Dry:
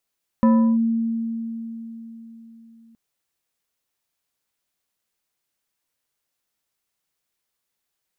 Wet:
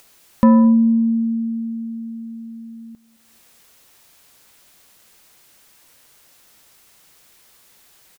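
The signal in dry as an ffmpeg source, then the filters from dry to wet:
-f lavfi -i "aevalsrc='0.282*pow(10,-3*t/4)*sin(2*PI*228*t+0.56*clip(1-t/0.35,0,1)*sin(2*PI*3.35*228*t))':duration=2.52:sample_rate=44100"
-filter_complex "[0:a]asplit=2[link_01][link_02];[link_02]acompressor=mode=upward:threshold=-29dB:ratio=2.5,volume=-1.5dB[link_03];[link_01][link_03]amix=inputs=2:normalize=0,asplit=2[link_04][link_05];[link_05]adelay=215,lowpass=frequency=890:poles=1,volume=-22dB,asplit=2[link_06][link_07];[link_07]adelay=215,lowpass=frequency=890:poles=1,volume=0.4,asplit=2[link_08][link_09];[link_09]adelay=215,lowpass=frequency=890:poles=1,volume=0.4[link_10];[link_04][link_06][link_08][link_10]amix=inputs=4:normalize=0"

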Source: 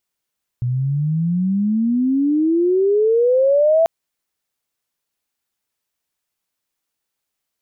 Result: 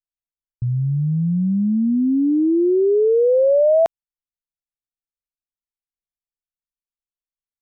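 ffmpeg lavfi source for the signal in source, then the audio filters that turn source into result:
-f lavfi -i "aevalsrc='pow(10,(-17+6.5*t/3.24)/20)*sin(2*PI*120*3.24/log(670/120)*(exp(log(670/120)*t/3.24)-1))':duration=3.24:sample_rate=44100"
-af "anlmdn=631"

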